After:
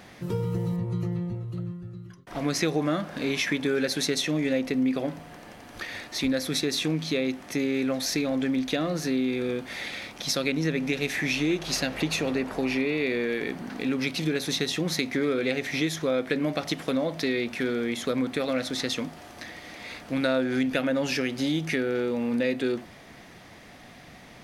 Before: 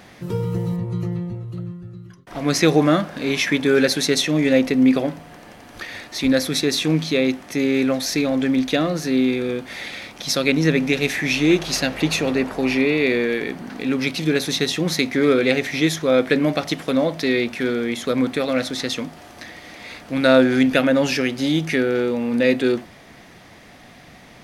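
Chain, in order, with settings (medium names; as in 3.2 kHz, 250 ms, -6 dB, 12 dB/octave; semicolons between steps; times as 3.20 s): compression 3:1, threshold -21 dBFS, peak gain reduction 9.5 dB; trim -3 dB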